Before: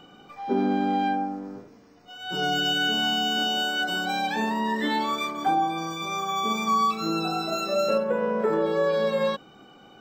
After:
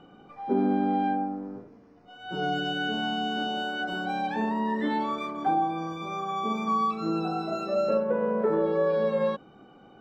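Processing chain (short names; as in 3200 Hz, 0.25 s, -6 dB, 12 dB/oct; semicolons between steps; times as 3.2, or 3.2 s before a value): LPF 1000 Hz 6 dB/oct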